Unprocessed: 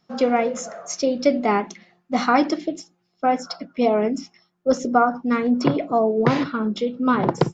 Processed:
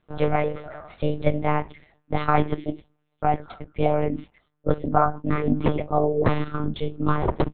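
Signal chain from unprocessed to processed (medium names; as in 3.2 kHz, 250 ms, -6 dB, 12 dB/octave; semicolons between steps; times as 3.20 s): monotone LPC vocoder at 8 kHz 150 Hz; trim -2 dB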